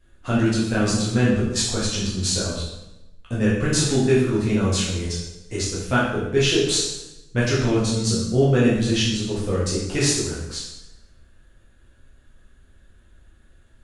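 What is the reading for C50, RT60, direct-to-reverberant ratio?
1.0 dB, 0.95 s, −7.5 dB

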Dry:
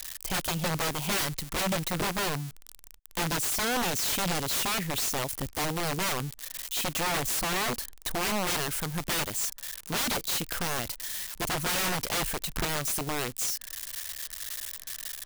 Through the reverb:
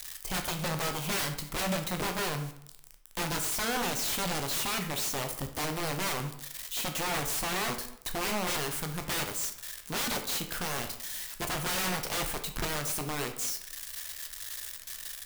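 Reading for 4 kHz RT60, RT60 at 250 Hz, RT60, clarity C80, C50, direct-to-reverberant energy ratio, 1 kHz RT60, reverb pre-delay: 0.50 s, 0.70 s, 0.70 s, 12.5 dB, 9.0 dB, 5.0 dB, 0.70 s, 11 ms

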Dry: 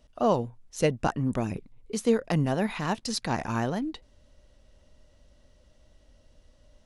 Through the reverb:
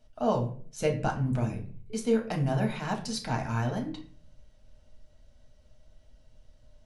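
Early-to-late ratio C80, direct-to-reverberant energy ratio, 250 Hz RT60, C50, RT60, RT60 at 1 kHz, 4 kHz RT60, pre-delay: 14.5 dB, 0.5 dB, 0.65 s, 10.5 dB, 0.45 s, 0.40 s, 0.30 s, 5 ms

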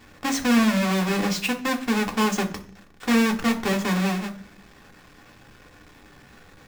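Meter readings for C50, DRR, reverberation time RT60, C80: 14.0 dB, 2.5 dB, 0.45 s, 18.0 dB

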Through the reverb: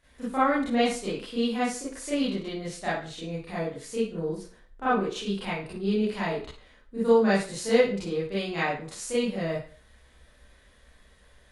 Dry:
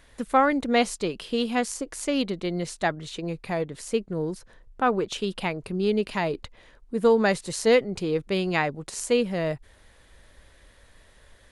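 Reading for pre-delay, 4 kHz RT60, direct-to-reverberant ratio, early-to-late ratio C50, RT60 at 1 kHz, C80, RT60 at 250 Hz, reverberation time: 31 ms, 0.40 s, −11.0 dB, 1.0 dB, 0.40 s, 7.5 dB, 0.40 s, 0.40 s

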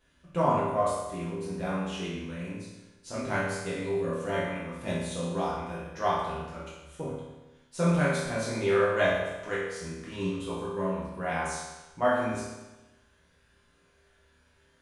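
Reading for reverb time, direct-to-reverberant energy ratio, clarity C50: 1.1 s, −9.0 dB, 0.0 dB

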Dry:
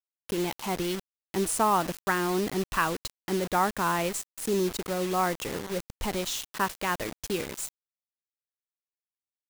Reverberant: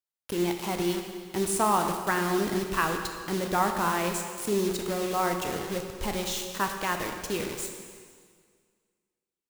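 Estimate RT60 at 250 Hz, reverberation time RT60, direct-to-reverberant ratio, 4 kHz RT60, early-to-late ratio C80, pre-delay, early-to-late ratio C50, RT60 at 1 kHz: 1.9 s, 1.9 s, 4.0 dB, 1.8 s, 6.5 dB, 6 ms, 5.5 dB, 1.9 s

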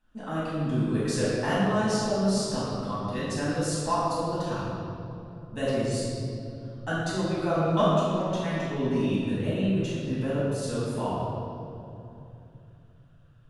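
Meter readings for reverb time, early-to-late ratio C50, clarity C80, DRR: 2.9 s, −3.0 dB, −1.0 dB, −10.5 dB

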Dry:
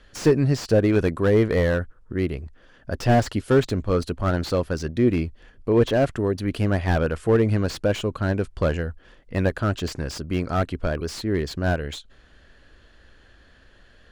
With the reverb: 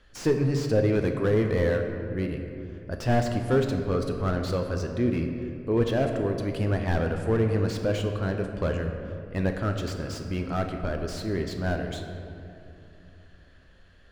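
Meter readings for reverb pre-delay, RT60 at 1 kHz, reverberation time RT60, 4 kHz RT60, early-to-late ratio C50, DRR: 8 ms, 2.4 s, 2.7 s, 1.4 s, 5.5 dB, 4.0 dB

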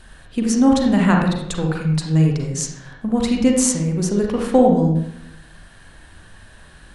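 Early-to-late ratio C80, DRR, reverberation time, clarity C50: 6.0 dB, 0.5 dB, 0.75 s, 2.5 dB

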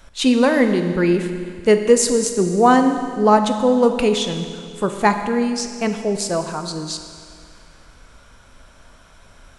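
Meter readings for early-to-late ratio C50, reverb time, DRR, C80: 8.0 dB, 2.2 s, 6.5 dB, 8.5 dB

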